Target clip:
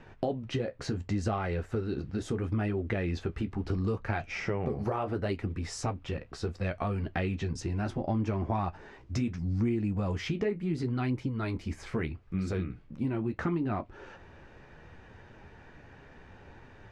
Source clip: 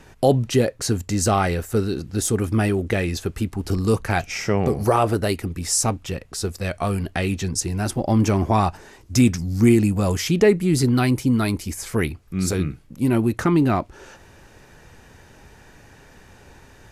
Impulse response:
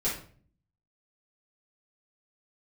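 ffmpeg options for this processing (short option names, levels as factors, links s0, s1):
-af "lowpass=2800,acompressor=threshold=0.0631:ratio=6,flanger=delay=8.1:depth=7:regen=-44:speed=0.72:shape=triangular"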